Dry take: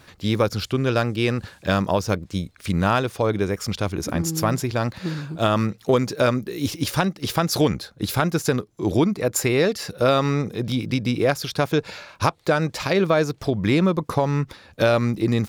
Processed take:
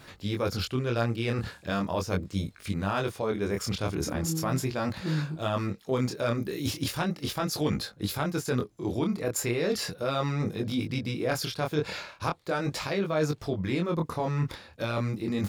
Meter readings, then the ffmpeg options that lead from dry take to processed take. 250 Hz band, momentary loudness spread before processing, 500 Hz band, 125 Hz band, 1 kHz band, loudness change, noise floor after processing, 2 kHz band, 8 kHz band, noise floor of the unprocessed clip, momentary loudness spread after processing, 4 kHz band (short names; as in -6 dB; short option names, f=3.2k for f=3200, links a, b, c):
-7.5 dB, 7 LU, -8.5 dB, -6.5 dB, -8.5 dB, -7.5 dB, -53 dBFS, -8.0 dB, -6.0 dB, -54 dBFS, 4 LU, -6.0 dB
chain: -af "bandreject=f=5.9k:w=27,areverse,acompressor=threshold=-26dB:ratio=6,areverse,flanger=delay=19.5:depth=7.1:speed=0.38,volume=3.5dB"